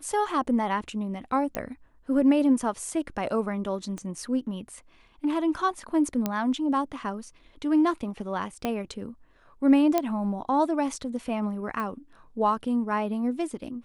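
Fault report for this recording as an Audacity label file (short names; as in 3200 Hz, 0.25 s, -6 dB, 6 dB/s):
1.550000	1.550000	pop -14 dBFS
3.980000	3.980000	pop -24 dBFS
6.260000	6.260000	pop -12 dBFS
8.650000	8.650000	pop -14 dBFS
9.980000	9.980000	pop -10 dBFS
11.800000	11.800000	pop -21 dBFS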